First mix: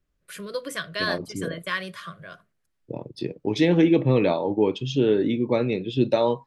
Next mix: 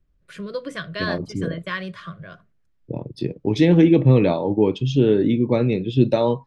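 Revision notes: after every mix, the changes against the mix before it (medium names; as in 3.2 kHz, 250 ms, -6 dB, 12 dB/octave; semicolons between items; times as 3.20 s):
first voice: add distance through air 91 m; master: add bass shelf 230 Hz +11 dB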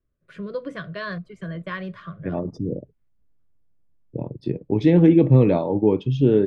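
second voice: entry +1.25 s; master: add low-pass 1.3 kHz 6 dB/octave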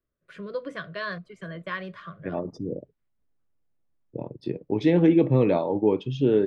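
master: add bass shelf 230 Hz -11 dB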